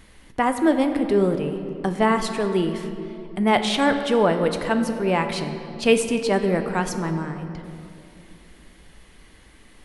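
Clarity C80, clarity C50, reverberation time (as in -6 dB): 9.0 dB, 8.0 dB, 2.7 s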